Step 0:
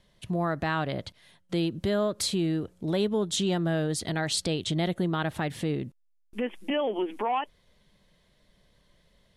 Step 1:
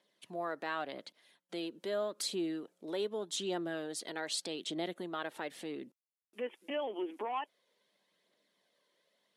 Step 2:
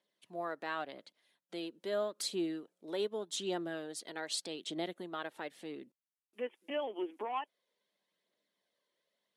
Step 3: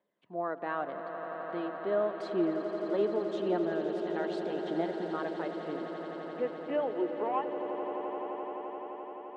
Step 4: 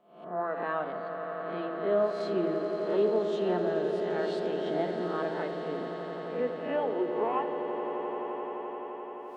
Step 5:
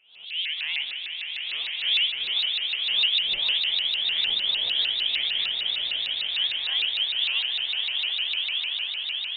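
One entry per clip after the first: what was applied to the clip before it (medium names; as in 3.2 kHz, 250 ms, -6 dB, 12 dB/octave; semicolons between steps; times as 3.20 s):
high-pass 270 Hz 24 dB/octave; phaser 0.84 Hz, delay 2.3 ms, feedback 34%; trim -8.5 dB
upward expansion 1.5:1, over -50 dBFS; trim +1 dB
low-pass 1.4 kHz 12 dB/octave; echo with a slow build-up 86 ms, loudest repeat 8, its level -12.5 dB; trim +5.5 dB
reverse spectral sustain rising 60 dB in 0.61 s; simulated room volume 3200 m³, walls furnished, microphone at 1.5 m
frequency inversion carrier 3.7 kHz; echo that smears into a reverb 1251 ms, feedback 52%, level -4 dB; vibrato with a chosen wave saw up 6.6 Hz, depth 250 cents; trim +2.5 dB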